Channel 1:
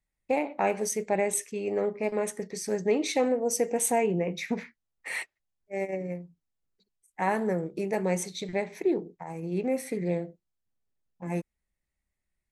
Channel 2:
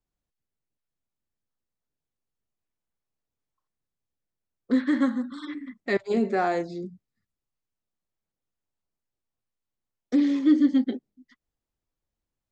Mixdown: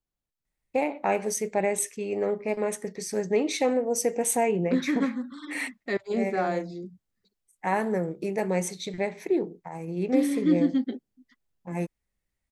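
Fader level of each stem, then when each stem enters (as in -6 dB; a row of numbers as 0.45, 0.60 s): +1.0, -3.5 dB; 0.45, 0.00 s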